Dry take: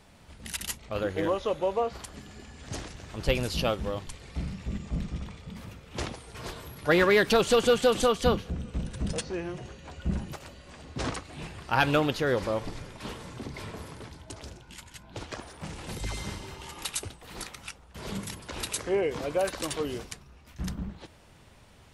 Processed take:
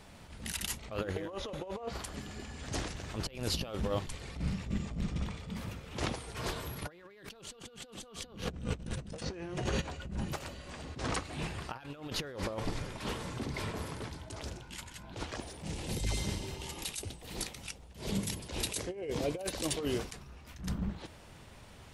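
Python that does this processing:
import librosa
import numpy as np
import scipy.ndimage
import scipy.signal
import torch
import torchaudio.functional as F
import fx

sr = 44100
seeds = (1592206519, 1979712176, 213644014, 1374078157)

y = fx.env_flatten(x, sr, amount_pct=50, at=(6.81, 9.8), fade=0.02)
y = fx.peak_eq(y, sr, hz=1300.0, db=-10.0, octaves=1.2, at=(15.36, 19.8))
y = fx.over_compress(y, sr, threshold_db=-32.0, ratio=-0.5)
y = fx.attack_slew(y, sr, db_per_s=130.0)
y = F.gain(torch.from_numpy(y), -2.5).numpy()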